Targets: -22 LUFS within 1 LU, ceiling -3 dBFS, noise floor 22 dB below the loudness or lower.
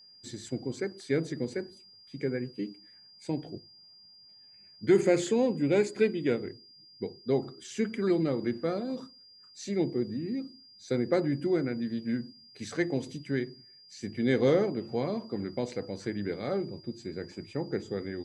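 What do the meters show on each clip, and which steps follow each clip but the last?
steady tone 4.8 kHz; tone level -53 dBFS; loudness -31.0 LUFS; peak level -12.5 dBFS; loudness target -22.0 LUFS
-> band-stop 4.8 kHz, Q 30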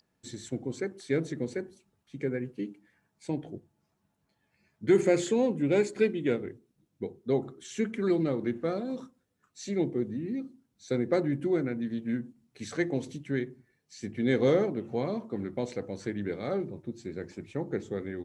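steady tone not found; loudness -31.0 LUFS; peak level -12.5 dBFS; loudness target -22.0 LUFS
-> trim +9 dB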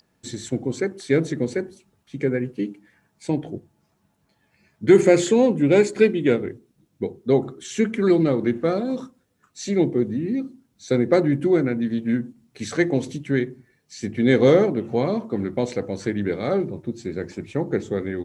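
loudness -22.0 LUFS; peak level -3.5 dBFS; noise floor -68 dBFS

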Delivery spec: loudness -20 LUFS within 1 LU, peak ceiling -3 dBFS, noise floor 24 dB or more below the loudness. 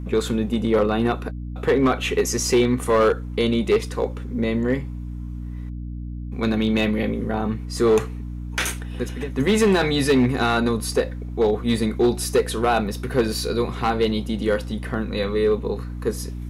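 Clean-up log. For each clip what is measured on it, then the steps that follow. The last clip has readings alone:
clipped samples 1.3%; clipping level -12.0 dBFS; hum 60 Hz; highest harmonic 300 Hz; hum level -29 dBFS; loudness -22.0 LUFS; peak level -12.0 dBFS; loudness target -20.0 LUFS
-> clip repair -12 dBFS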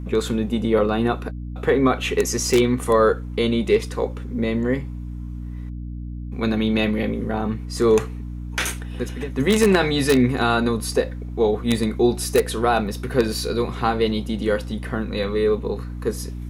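clipped samples 0.0%; hum 60 Hz; highest harmonic 300 Hz; hum level -29 dBFS
-> de-hum 60 Hz, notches 5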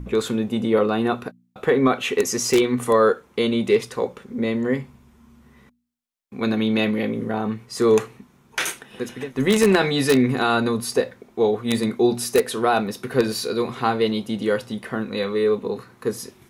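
hum not found; loudness -22.0 LUFS; peak level -3.0 dBFS; loudness target -20.0 LUFS
-> trim +2 dB; peak limiter -3 dBFS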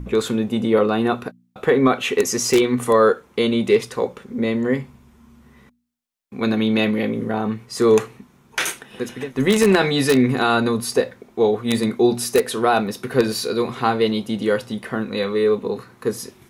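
loudness -20.0 LUFS; peak level -3.0 dBFS; noise floor -55 dBFS

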